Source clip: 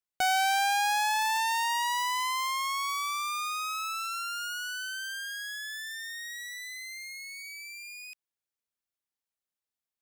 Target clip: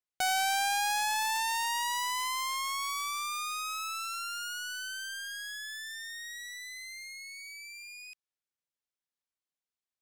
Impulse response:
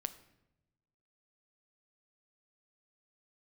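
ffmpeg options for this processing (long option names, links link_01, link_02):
-af "aemphasis=mode=production:type=50kf,adynamicsmooth=sensitivity=3.5:basefreq=5600,volume=-4dB"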